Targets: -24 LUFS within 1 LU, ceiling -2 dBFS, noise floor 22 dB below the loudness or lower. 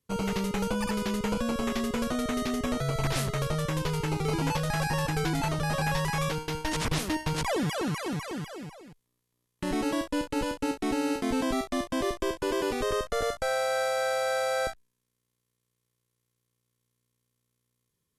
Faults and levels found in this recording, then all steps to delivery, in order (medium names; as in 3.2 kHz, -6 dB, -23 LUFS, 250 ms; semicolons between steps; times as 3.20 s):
loudness -29.5 LUFS; peak level -16.0 dBFS; loudness target -24.0 LUFS
-> trim +5.5 dB